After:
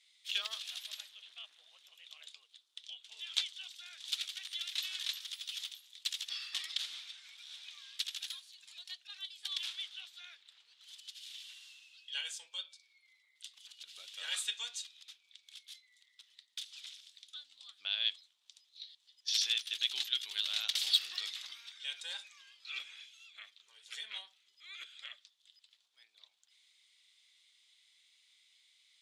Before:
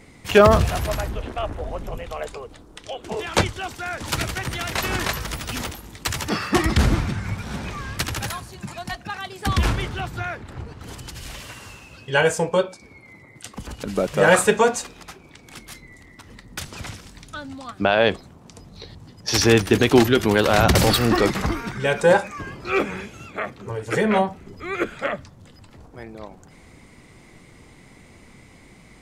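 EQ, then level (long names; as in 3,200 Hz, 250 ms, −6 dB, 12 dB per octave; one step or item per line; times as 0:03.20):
resonant band-pass 3,500 Hz, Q 5
first difference
+4.5 dB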